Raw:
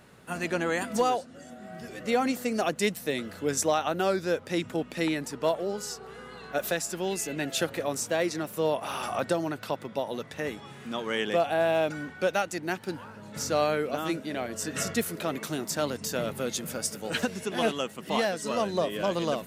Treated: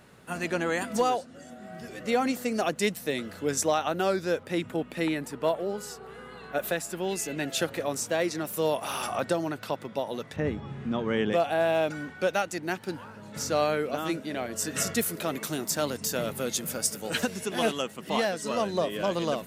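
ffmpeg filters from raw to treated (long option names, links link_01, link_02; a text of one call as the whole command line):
ffmpeg -i in.wav -filter_complex "[0:a]asettb=1/sr,asplit=3[link_01][link_02][link_03];[link_01]atrim=end=4.434[link_04];[link_02]atrim=start=4.43:end=7.09,asetpts=PTS-STARTPTS,afade=type=in:duration=0.004:curve=qsin,afade=type=out:start_time=2.656:duration=0.004:curve=qsin,equalizer=frequency=5700:width=1.4:gain=-7[link_05];[link_03]atrim=start=7.086[link_06];[link_04][link_05]acrossfade=duration=0.004:curve1=hsin:curve2=qsin[link_07];[link_07][link_06]acrossfade=duration=0.004:curve1=qsin:curve2=hsin,asettb=1/sr,asplit=3[link_08][link_09][link_10];[link_08]atrim=end=8.454[link_11];[link_09]atrim=start=8.45:end=9.07,asetpts=PTS-STARTPTS,afade=type=in:duration=0.004:curve=qsin,afade=type=out:start_time=0.616:duration=0.004:curve=qsin,highshelf=frequency=4900:gain=8[link_12];[link_10]atrim=start=9.066[link_13];[link_11][link_12]acrossfade=duration=0.004:curve1=hsin:curve2=qsin[link_14];[link_14][link_13]acrossfade=duration=0.004:curve1=qsin:curve2=hsin,asettb=1/sr,asplit=3[link_15][link_16][link_17];[link_15]atrim=end=10.364[link_18];[link_16]atrim=start=10.36:end=11.33,asetpts=PTS-STARTPTS,afade=type=in:duration=0.004:curve=qsin,afade=type=out:start_time=0.966:duration=0.004:curve=qsin,aemphasis=mode=reproduction:type=riaa[link_19];[link_17]atrim=start=11.326[link_20];[link_18][link_19]acrossfade=duration=0.004:curve1=hsin:curve2=qsin[link_21];[link_21][link_20]acrossfade=duration=0.004:curve1=qsin:curve2=hsin,asettb=1/sr,asplit=3[link_22][link_23][link_24];[link_22]atrim=end=14.554[link_25];[link_23]atrim=start=14.55:end=17.82,asetpts=PTS-STARTPTS,afade=type=in:duration=0.004:curve=qsin,afade=type=out:start_time=3.266:duration=0.004:curve=qsin,highshelf=frequency=7100:gain=7[link_26];[link_24]atrim=start=17.816[link_27];[link_25][link_26]acrossfade=duration=0.004:curve1=hsin:curve2=qsin[link_28];[link_28][link_27]acrossfade=duration=0.004:curve1=qsin:curve2=hsin" out.wav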